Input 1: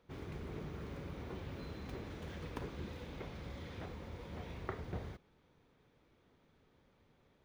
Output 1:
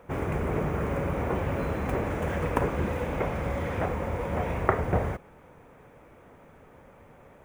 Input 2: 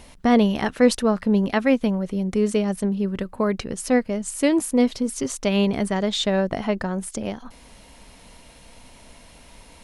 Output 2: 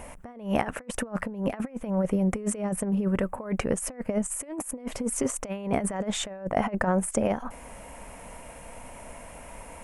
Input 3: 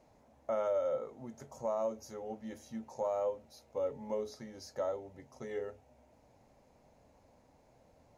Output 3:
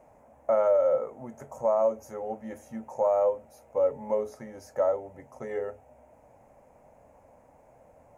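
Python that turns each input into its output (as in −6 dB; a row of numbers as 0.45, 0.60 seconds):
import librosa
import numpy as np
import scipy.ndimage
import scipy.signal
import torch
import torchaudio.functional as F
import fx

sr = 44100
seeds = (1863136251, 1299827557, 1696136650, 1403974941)

y = fx.curve_eq(x, sr, hz=(380.0, 560.0, 2500.0, 4100.0, 8000.0), db=(0, 7, 3, -11, 11))
y = fx.over_compress(y, sr, threshold_db=-24.0, ratio=-0.5)
y = fx.high_shelf(y, sr, hz=3800.0, db=-10.0)
y = y * 10.0 ** (-30 / 20.0) / np.sqrt(np.mean(np.square(y)))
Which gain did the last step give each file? +15.5, −3.0, +4.0 decibels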